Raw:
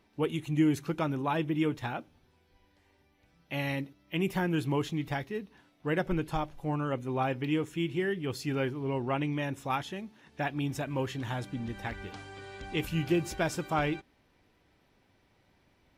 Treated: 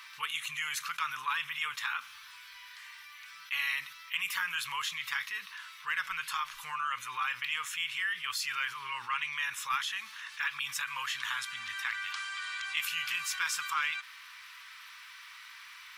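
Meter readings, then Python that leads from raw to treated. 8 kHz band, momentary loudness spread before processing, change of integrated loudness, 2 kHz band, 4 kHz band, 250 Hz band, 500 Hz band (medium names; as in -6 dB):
+8.5 dB, 10 LU, -1.5 dB, +6.5 dB, +8.0 dB, under -35 dB, under -30 dB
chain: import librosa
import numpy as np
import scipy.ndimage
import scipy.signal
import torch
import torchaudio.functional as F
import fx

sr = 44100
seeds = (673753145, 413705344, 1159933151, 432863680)

p1 = scipy.signal.sosfilt(scipy.signal.ellip(4, 1.0, 40, 1100.0, 'highpass', fs=sr, output='sos'), x)
p2 = np.clip(p1, -10.0 ** (-30.0 / 20.0), 10.0 ** (-30.0 / 20.0))
p3 = p1 + F.gain(torch.from_numpy(p2), -7.0).numpy()
y = fx.env_flatten(p3, sr, amount_pct=50)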